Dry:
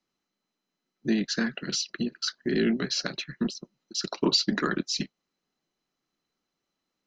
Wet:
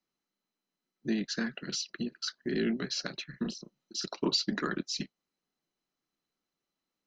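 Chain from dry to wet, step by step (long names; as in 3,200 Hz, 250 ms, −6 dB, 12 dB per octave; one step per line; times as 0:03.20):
0:03.30–0:04.06: double-tracking delay 35 ms −6 dB
level −5.5 dB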